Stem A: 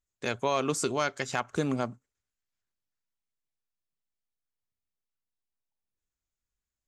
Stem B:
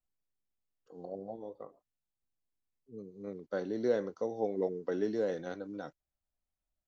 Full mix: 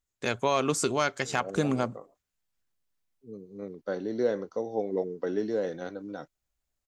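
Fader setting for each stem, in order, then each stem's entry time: +2.0 dB, +3.0 dB; 0.00 s, 0.35 s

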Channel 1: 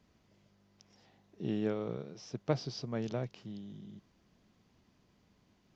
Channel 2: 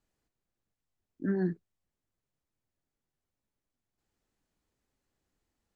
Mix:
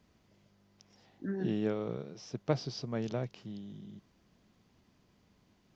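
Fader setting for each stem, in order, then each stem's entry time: +1.0 dB, -6.0 dB; 0.00 s, 0.00 s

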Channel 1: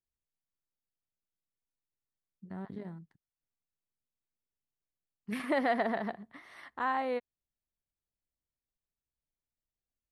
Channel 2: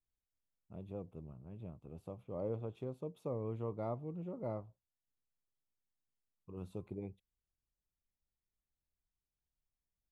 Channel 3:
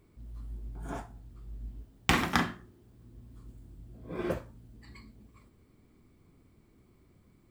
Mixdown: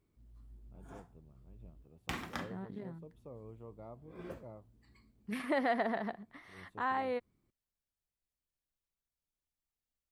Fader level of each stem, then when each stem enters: -2.5 dB, -10.5 dB, -14.0 dB; 0.00 s, 0.00 s, 0.00 s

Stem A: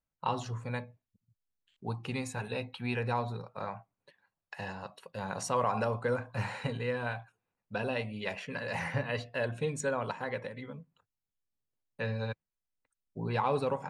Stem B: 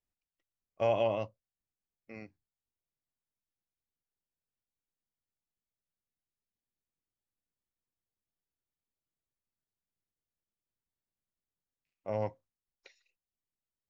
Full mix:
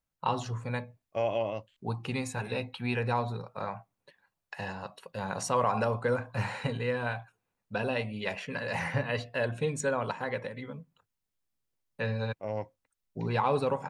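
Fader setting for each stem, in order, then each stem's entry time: +2.5 dB, -1.0 dB; 0.00 s, 0.35 s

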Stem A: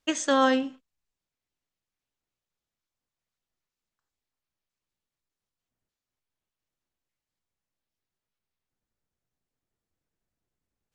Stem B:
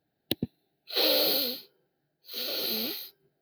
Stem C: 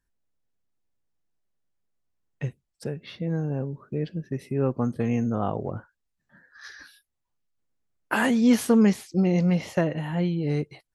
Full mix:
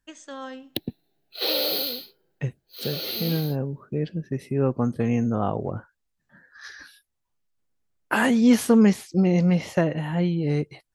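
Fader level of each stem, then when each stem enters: -15.5 dB, 0.0 dB, +2.0 dB; 0.00 s, 0.45 s, 0.00 s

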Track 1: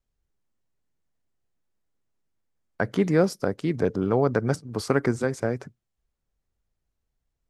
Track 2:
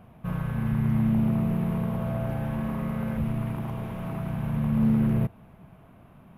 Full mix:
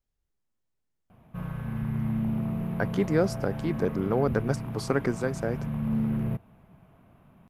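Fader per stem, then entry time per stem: -3.5 dB, -5.0 dB; 0.00 s, 1.10 s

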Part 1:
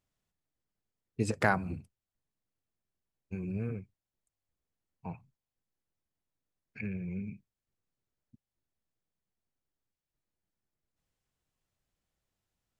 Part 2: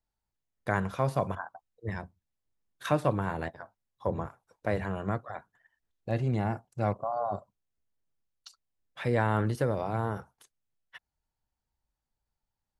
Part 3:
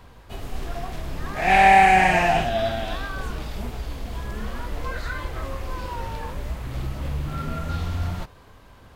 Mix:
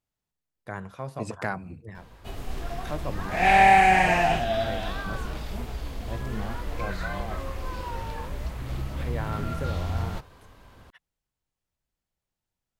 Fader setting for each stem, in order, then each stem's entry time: -3.5 dB, -7.5 dB, -2.5 dB; 0.00 s, 0.00 s, 1.95 s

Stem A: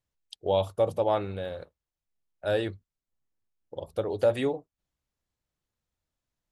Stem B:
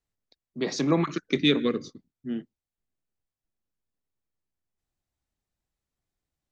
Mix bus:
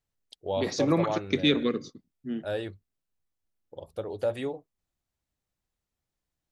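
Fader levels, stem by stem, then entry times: -5.0 dB, -1.5 dB; 0.00 s, 0.00 s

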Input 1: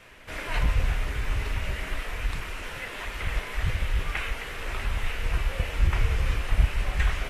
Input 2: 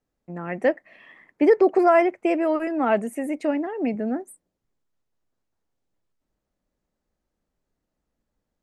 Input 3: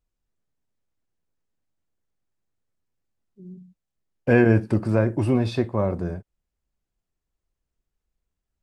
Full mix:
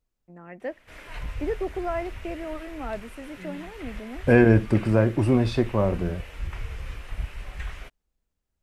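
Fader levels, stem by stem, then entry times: -10.0 dB, -12.5 dB, +0.5 dB; 0.60 s, 0.00 s, 0.00 s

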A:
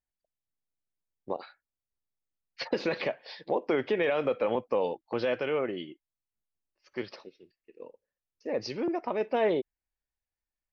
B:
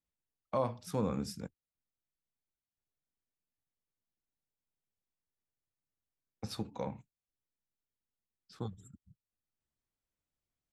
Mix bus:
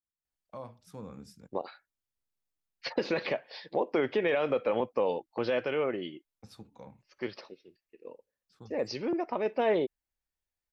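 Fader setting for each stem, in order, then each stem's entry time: -0.5 dB, -11.0 dB; 0.25 s, 0.00 s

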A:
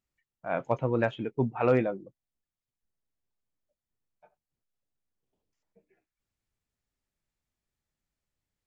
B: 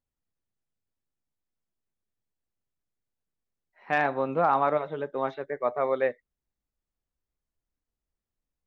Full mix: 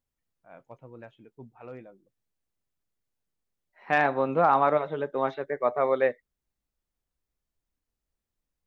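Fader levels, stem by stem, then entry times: -19.5 dB, +2.0 dB; 0.00 s, 0.00 s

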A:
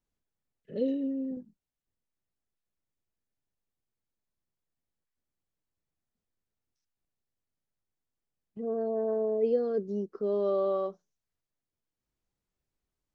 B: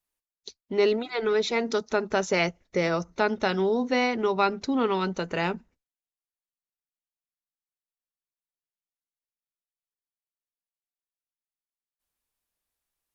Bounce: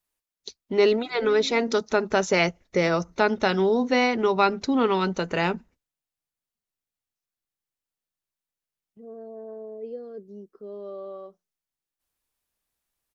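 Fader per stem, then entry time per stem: -9.5 dB, +3.0 dB; 0.40 s, 0.00 s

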